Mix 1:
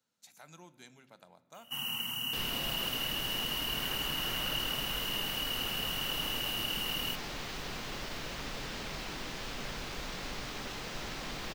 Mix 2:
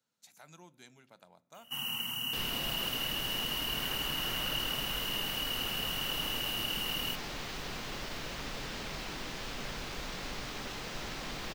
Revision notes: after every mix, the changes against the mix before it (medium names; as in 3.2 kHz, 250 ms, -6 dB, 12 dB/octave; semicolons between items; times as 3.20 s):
speech: send -9.0 dB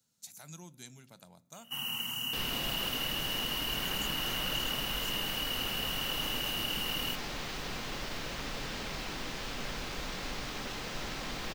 speech: add tone controls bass +12 dB, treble +13 dB; second sound: send +9.5 dB